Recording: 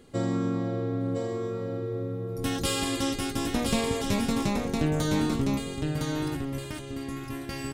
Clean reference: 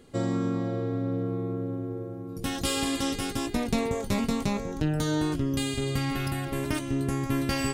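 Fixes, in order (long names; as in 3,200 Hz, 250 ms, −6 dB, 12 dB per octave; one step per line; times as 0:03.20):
clipped peaks rebuilt −14.5 dBFS
echo removal 1,010 ms −4 dB
level 0 dB, from 0:05.57 +8 dB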